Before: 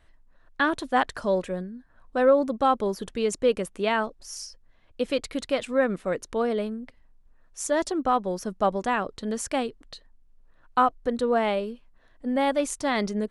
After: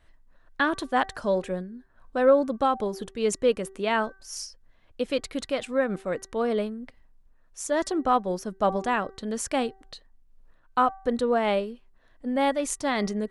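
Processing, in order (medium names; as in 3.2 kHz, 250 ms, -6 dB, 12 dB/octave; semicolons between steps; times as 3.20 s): de-hum 385.8 Hz, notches 5; random flutter of the level, depth 60%; trim +2.5 dB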